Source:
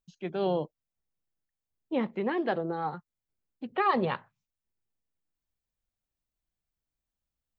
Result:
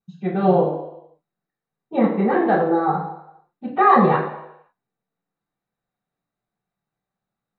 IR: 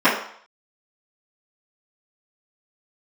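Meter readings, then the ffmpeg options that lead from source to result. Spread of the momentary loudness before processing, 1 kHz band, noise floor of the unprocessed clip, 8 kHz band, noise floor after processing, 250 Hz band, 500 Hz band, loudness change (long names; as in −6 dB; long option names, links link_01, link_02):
12 LU, +13.5 dB, below −85 dBFS, can't be measured, below −85 dBFS, +12.5 dB, +11.0 dB, +12.0 dB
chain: -filter_complex "[1:a]atrim=start_sample=2205,asetrate=31752,aresample=44100[link_01];[0:a][link_01]afir=irnorm=-1:irlink=0,volume=-15dB"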